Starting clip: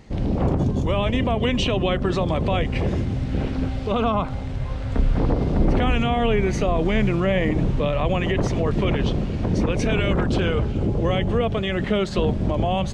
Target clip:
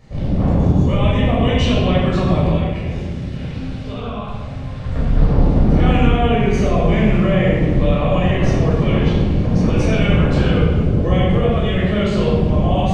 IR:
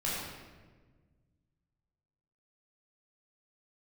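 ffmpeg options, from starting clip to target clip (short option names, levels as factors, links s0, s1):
-filter_complex "[0:a]asettb=1/sr,asplit=3[s0][s1][s2];[s0]atrim=end=2.494[s3];[s1]atrim=start=2.49:end=4.85,asetpts=PTS-STARTPTS,afade=t=in:d=0.004:c=qsin,afade=t=out:st=2.356:d=0.004:c=qsin,acrossover=split=95|1800[s4][s5][s6];[s4]acompressor=threshold=0.0112:ratio=4[s7];[s5]acompressor=threshold=0.0251:ratio=4[s8];[s6]acompressor=threshold=0.01:ratio=4[s9];[s7][s8][s9]amix=inputs=3:normalize=0[s10];[s2]atrim=start=4.846[s11];[s3][s10]acrossfade=d=0.004:c1=hsin:c2=qsin[s12];[s12][s11]acrossfade=d=0.004:c1=qsin:c2=hsin[s13];[1:a]atrim=start_sample=2205[s14];[s13][s14]afir=irnorm=-1:irlink=0,volume=0.708"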